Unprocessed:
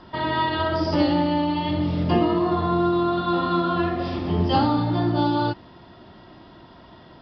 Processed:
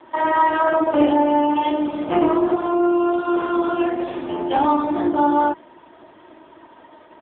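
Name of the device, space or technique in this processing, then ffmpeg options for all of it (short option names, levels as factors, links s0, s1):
telephone: -filter_complex "[0:a]aecho=1:1:3.3:0.56,asettb=1/sr,asplit=3[s0][s1][s2];[s0]atrim=end=4.114[s3];[s1]atrim=start=4.11:end=4.84,asetpts=PTS-STARTPTS,afade=t=in:d=0.004:c=qsin,afade=t=out:st=0.726:d=0.004:c=qsin,lowshelf=f=210:g=-4[s4];[s2]atrim=start=4.836[s5];[s3][s4]acrossfade=d=0.004:c1=hsin:c2=qsin[s6];[s6][s5]acrossfade=d=0.004:c1=qsin:c2=hsin,highpass=360,lowpass=3100,volume=1.78" -ar 8000 -c:a libopencore_amrnb -b:a 5900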